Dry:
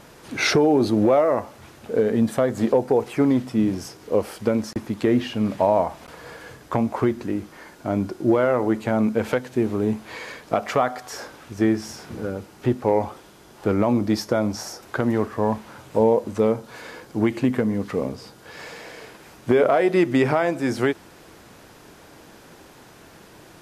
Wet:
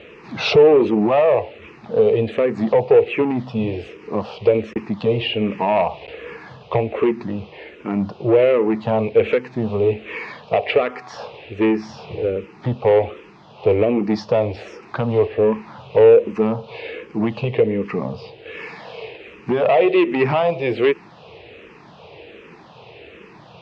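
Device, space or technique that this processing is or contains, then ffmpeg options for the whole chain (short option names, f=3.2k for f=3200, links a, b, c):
barber-pole phaser into a guitar amplifier: -filter_complex "[0:a]asplit=2[a][b];[b]afreqshift=-1.3[c];[a][c]amix=inputs=2:normalize=1,asoftclip=type=tanh:threshold=-18dB,highpass=76,equalizer=f=270:t=q:w=4:g=-8,equalizer=f=450:t=q:w=4:g=7,equalizer=f=1.5k:t=q:w=4:g=-9,equalizer=f=2.6k:t=q:w=4:g=9,lowpass=f=3.8k:w=0.5412,lowpass=f=3.8k:w=1.3066,volume=7.5dB"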